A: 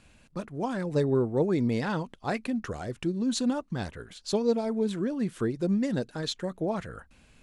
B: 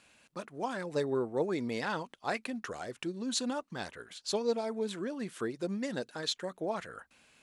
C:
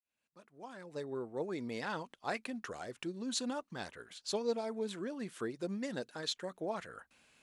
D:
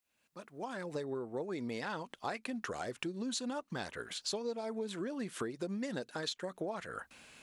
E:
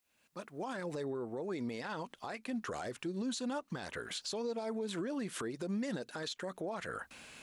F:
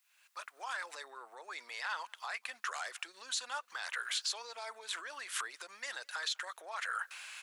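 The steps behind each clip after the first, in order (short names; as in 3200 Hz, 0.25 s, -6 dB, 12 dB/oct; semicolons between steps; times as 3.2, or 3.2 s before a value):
HPF 650 Hz 6 dB/oct
opening faded in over 2.12 s; gain -3.5 dB
compressor 6:1, threshold -46 dBFS, peak gain reduction 16 dB; gain +10 dB
limiter -34.5 dBFS, peak gain reduction 11.5 dB; gain +4 dB
ladder high-pass 900 Hz, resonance 20%; outdoor echo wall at 34 m, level -29 dB; gain +10.5 dB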